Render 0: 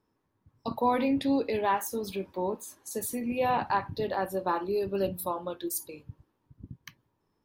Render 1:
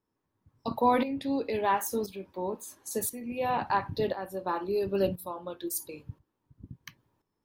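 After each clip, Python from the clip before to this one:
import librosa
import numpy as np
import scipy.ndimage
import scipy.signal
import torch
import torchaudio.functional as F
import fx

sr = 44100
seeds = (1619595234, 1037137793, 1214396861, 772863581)

y = fx.tremolo_shape(x, sr, shape='saw_up', hz=0.97, depth_pct=75)
y = y * librosa.db_to_amplitude(3.0)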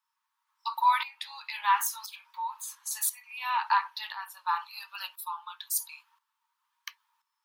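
y = scipy.signal.sosfilt(scipy.signal.cheby1(6, 3, 880.0, 'highpass', fs=sr, output='sos'), x)
y = y * librosa.db_to_amplitude(7.0)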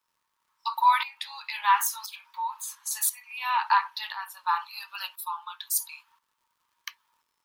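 y = fx.dmg_crackle(x, sr, seeds[0], per_s=140.0, level_db=-63.0)
y = y * librosa.db_to_amplitude(3.0)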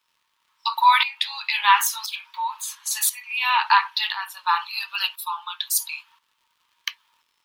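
y = fx.peak_eq(x, sr, hz=3100.0, db=10.0, octaves=1.5)
y = y * librosa.db_to_amplitude(3.0)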